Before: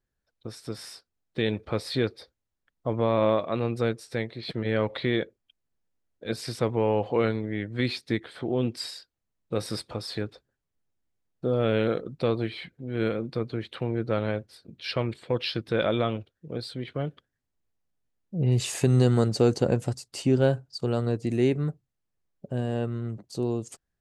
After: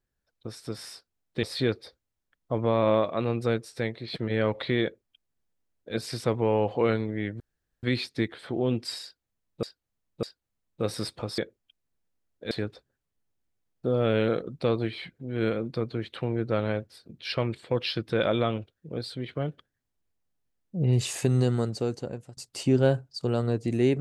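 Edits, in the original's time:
1.43–1.78 s: delete
5.18–6.31 s: copy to 10.10 s
7.75 s: insert room tone 0.43 s
8.95–9.55 s: loop, 3 plays
18.52–19.96 s: fade out, to -22 dB

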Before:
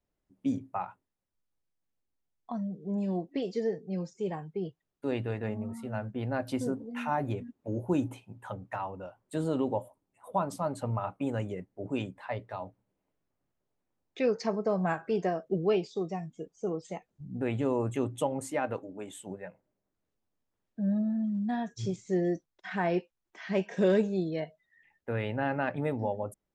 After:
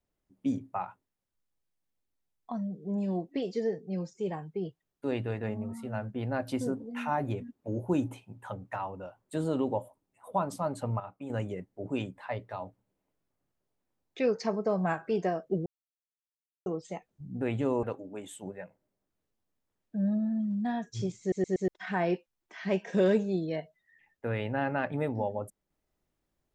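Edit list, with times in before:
11.00–11.30 s: gain -9 dB
15.66–16.66 s: mute
17.83–18.67 s: delete
22.04 s: stutter in place 0.12 s, 4 plays

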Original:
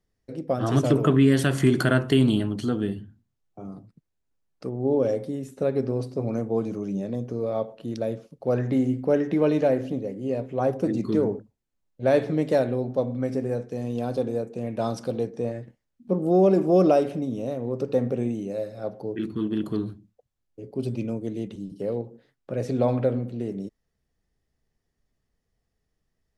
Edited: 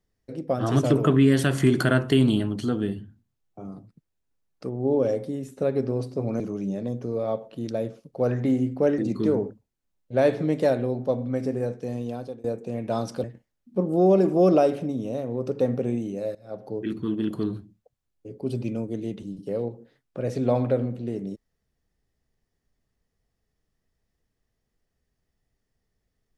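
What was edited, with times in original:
6.40–6.67 s: delete
9.25–10.87 s: delete
13.81–14.33 s: fade out, to -23.5 dB
15.13–15.57 s: delete
18.68–19.04 s: fade in linear, from -17.5 dB

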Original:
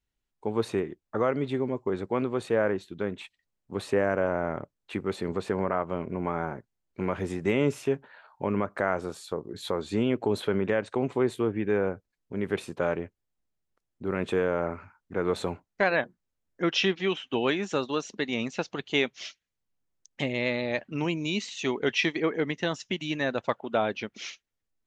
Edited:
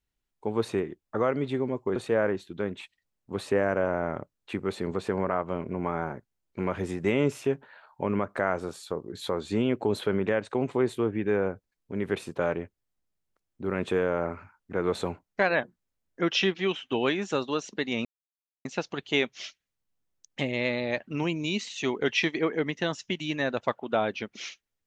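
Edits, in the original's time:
1.96–2.37 s: delete
18.46 s: insert silence 0.60 s

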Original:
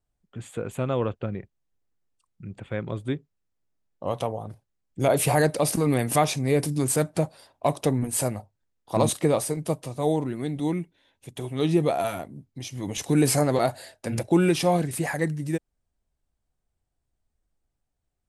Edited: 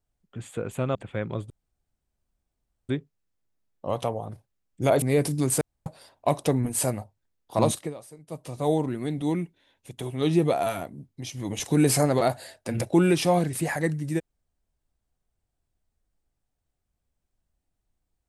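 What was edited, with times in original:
0.95–2.52 s: delete
3.07 s: insert room tone 1.39 s
5.20–6.40 s: delete
6.99–7.24 s: room tone
9.02–9.95 s: dip -19 dB, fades 0.30 s

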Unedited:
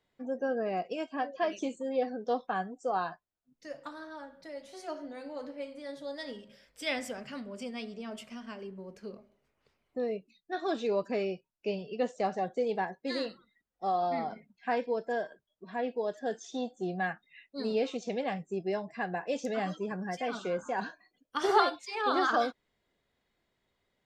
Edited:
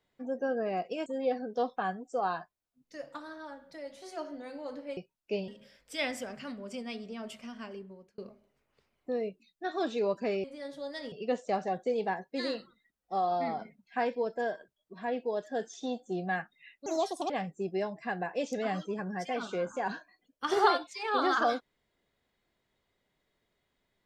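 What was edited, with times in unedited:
1.06–1.77 s: delete
5.68–6.36 s: swap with 11.32–11.83 s
8.61–9.06 s: fade out
17.57–18.22 s: speed 148%

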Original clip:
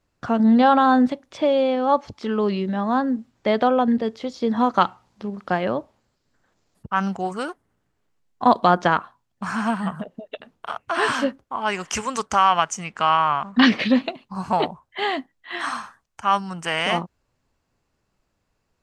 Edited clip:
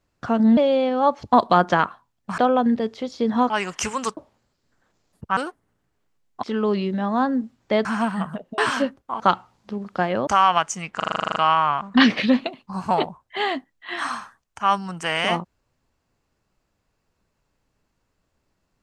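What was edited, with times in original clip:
0.57–1.43 s: delete
2.18–3.60 s: swap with 8.45–9.51 s
4.72–5.79 s: swap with 11.62–12.29 s
6.99–7.39 s: delete
10.24–11.00 s: delete
12.98 s: stutter 0.04 s, 11 plays

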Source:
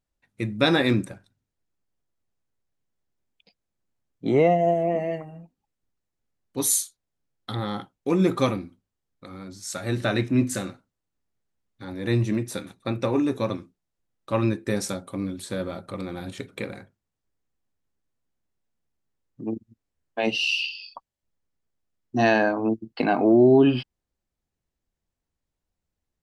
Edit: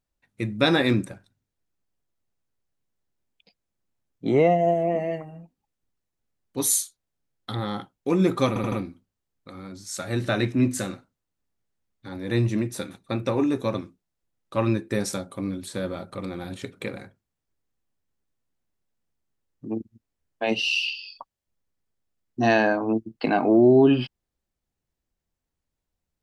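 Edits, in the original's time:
8.48 s: stutter 0.08 s, 4 plays

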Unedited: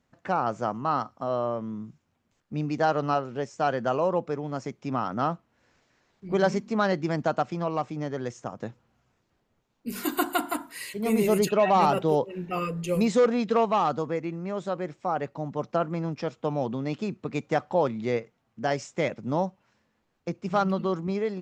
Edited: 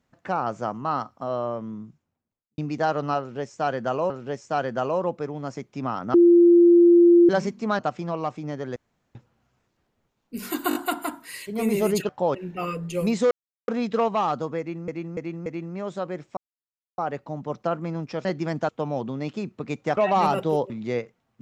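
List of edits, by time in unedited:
1.62–2.58 s: studio fade out
3.19–4.10 s: loop, 2 plays
5.23–6.38 s: bleep 345 Hz -10.5 dBFS
6.88–7.32 s: move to 16.34 s
8.29–8.68 s: room tone
10.22 s: stutter 0.02 s, 4 plays
11.56–12.29 s: swap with 17.62–17.88 s
13.25 s: insert silence 0.37 s
14.16–14.45 s: loop, 4 plays
15.07 s: insert silence 0.61 s

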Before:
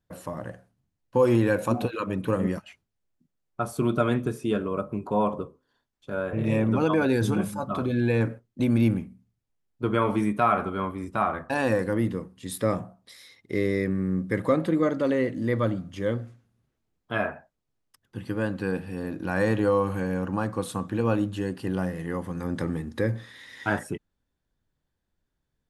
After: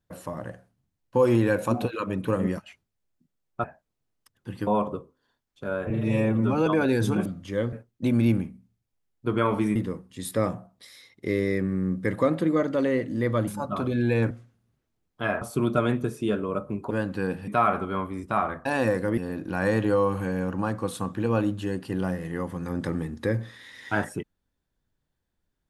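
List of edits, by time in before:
3.64–5.13 s: swap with 17.32–18.35 s
6.36–6.87 s: stretch 1.5×
7.46–8.29 s: swap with 15.74–16.21 s
10.32–12.02 s: move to 18.92 s

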